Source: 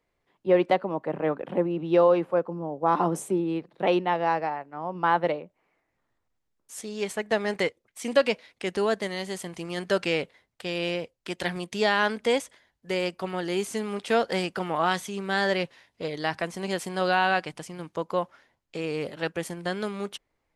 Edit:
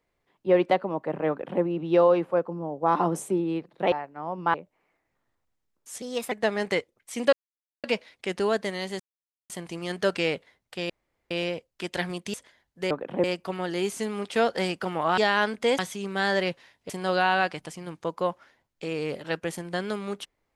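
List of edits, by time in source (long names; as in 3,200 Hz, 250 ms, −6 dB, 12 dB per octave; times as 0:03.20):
0:01.29–0:01.62: duplicate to 0:12.98
0:03.92–0:04.49: remove
0:05.11–0:05.37: remove
0:06.85–0:07.20: play speed 118%
0:08.21: splice in silence 0.51 s
0:09.37: splice in silence 0.50 s
0:10.77: splice in room tone 0.41 s
0:11.80–0:12.41: move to 0:14.92
0:16.03–0:16.82: remove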